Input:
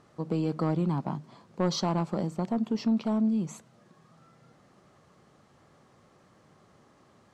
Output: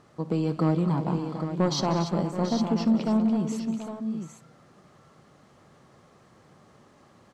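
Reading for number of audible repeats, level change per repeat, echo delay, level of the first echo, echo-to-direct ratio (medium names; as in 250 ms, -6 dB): 5, no regular repeats, 59 ms, -18.5 dB, -4.5 dB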